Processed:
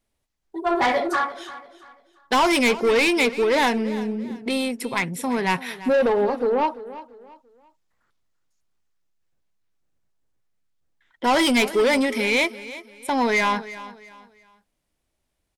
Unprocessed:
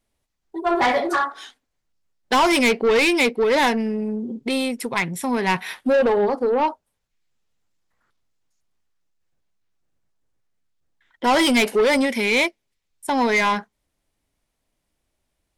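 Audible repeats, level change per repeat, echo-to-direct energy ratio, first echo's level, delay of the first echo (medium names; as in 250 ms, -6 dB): 2, -10.0 dB, -15.5 dB, -16.0 dB, 341 ms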